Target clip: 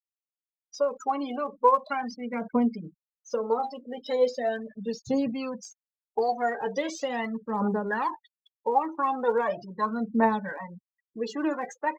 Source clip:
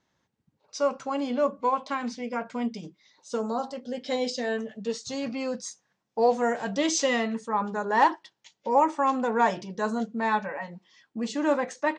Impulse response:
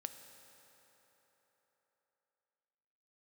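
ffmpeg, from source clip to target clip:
-filter_complex "[0:a]afftfilt=real='re*gte(hypot(re,im),0.0158)':imag='im*gte(hypot(re,im),0.0158)':win_size=1024:overlap=0.75,acrossover=split=210|1700[a][b][c];[a]acompressor=threshold=-44dB:ratio=4[d];[b]acompressor=threshold=-26dB:ratio=4[e];[c]acompressor=threshold=-47dB:ratio=4[f];[d][e][f]amix=inputs=3:normalize=0,aphaser=in_gain=1:out_gain=1:delay=2.9:decay=0.71:speed=0.39:type=triangular"

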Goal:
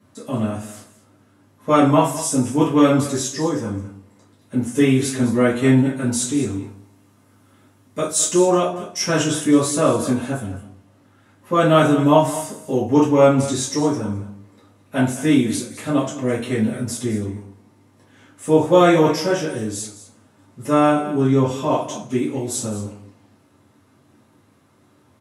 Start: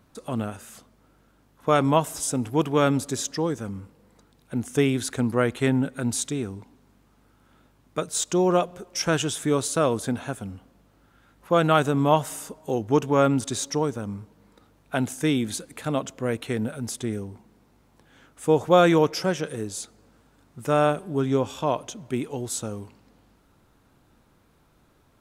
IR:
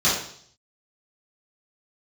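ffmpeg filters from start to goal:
-filter_complex "[0:a]asettb=1/sr,asplit=3[a][b][c];[a]atrim=end=6.504[d];[b]atrim=start=6.5:end=8.42,asetpts=PTS-STARTPTS,afade=t=in:d=0.004:c=qsin,afade=t=out:st=1.916:d=0.004:c=qsin,highshelf=f=7.8k:g=8[e];[c]atrim=start=8.416[f];[d][e]acrossfade=d=0.004:c1=hsin:c2=qsin[g];[g][f]acrossfade=d=0.004:c1=qsin:c2=hsin,aecho=1:1:210:0.188[h];[1:a]atrim=start_sample=2205,asetrate=70560,aresample=44100[i];[h][i]afir=irnorm=-1:irlink=0,volume=-9dB"

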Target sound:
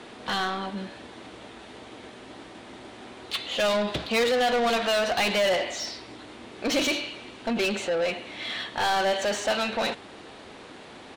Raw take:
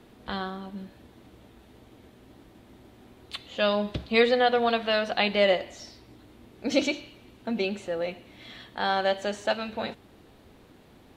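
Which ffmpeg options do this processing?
-filter_complex "[0:a]aresample=22050,aresample=44100,asoftclip=type=tanh:threshold=-18.5dB,asplit=2[a][b];[b]highpass=f=720:p=1,volume=21dB,asoftclip=type=tanh:threshold=-18.5dB[c];[a][c]amix=inputs=2:normalize=0,lowpass=f=6.5k:p=1,volume=-6dB"

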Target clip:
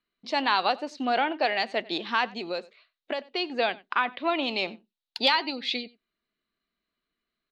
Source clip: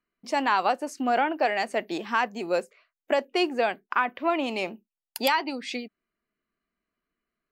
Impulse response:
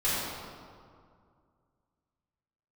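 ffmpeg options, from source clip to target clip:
-filter_complex "[0:a]asettb=1/sr,asplit=3[a][b][c];[a]atrim=end=2.374[d];[b]atrim=start=2.37:end=3.5,asetpts=PTS-STARTPTS,afade=t=in:d=0.004:c=qsin,afade=t=out:st=1.126:d=0.004:c=qsin,acompressor=threshold=-31dB:ratio=2[e];[c]atrim=start=3.496[f];[d][e]acrossfade=d=0.004:c1=hsin:c2=qsin[g];[g][f]acrossfade=d=0.004:c1=qsin:c2=hsin,lowpass=f=3.9k:t=q:w=5.1,asplit=2[h][i];[i]adelay=93.29,volume=-22dB,highshelf=f=4k:g=-2.1[j];[h][j]amix=inputs=2:normalize=0,volume=-2dB"

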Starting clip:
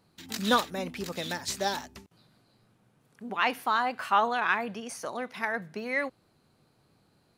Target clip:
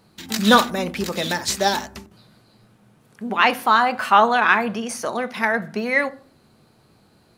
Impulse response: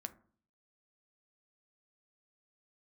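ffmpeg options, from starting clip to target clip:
-filter_complex "[0:a]asplit=2[a][b];[1:a]atrim=start_sample=2205,asetrate=43659,aresample=44100[c];[b][c]afir=irnorm=-1:irlink=0,volume=9dB[d];[a][d]amix=inputs=2:normalize=0,volume=1dB"

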